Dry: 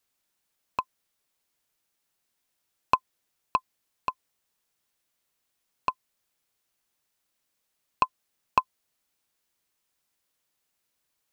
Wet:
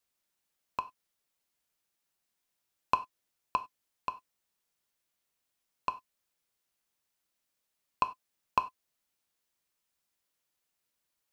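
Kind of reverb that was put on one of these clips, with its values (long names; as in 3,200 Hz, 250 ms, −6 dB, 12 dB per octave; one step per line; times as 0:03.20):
reverb whose tail is shaped and stops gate 120 ms falling, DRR 10 dB
level −5 dB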